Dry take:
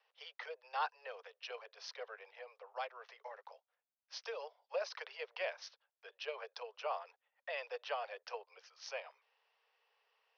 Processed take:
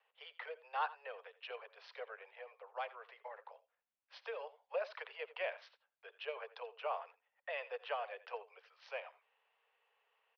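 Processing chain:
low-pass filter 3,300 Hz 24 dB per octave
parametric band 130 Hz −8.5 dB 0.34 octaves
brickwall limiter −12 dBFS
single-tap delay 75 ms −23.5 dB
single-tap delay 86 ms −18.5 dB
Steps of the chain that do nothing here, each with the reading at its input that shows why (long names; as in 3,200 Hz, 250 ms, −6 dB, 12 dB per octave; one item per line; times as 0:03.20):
parametric band 130 Hz: nothing at its input below 360 Hz
brickwall limiter −12 dBFS: peak of its input −24.5 dBFS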